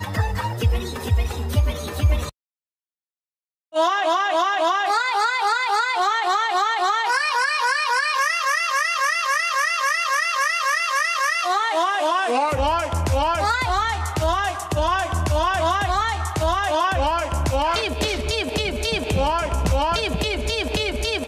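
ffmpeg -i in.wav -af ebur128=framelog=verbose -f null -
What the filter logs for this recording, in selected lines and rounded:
Integrated loudness:
  I:         -21.0 LUFS
  Threshold: -31.0 LUFS
Loudness range:
  LRA:         3.8 LU
  Threshold: -41.0 LUFS
  LRA low:   -23.5 LUFS
  LRA high:  -19.7 LUFS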